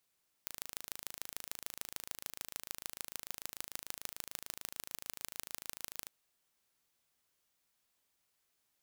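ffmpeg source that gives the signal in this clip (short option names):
-f lavfi -i "aevalsrc='0.282*eq(mod(n,1646),0)*(0.5+0.5*eq(mod(n,6584),0))':d=5.6:s=44100"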